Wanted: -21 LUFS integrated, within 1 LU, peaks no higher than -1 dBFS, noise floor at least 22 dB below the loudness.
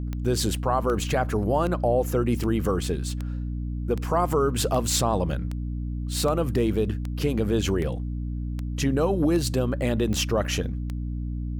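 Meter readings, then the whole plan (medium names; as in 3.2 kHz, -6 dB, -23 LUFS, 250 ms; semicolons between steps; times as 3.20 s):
clicks found 15; hum 60 Hz; highest harmonic 300 Hz; hum level -27 dBFS; loudness -25.5 LUFS; peak level -11.0 dBFS; loudness target -21.0 LUFS
-> de-click; hum notches 60/120/180/240/300 Hz; trim +4.5 dB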